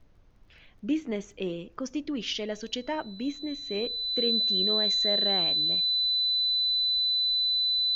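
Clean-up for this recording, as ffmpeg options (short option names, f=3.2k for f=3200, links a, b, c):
-af "adeclick=t=4,bandreject=f=4k:w=30,agate=range=-21dB:threshold=-46dB"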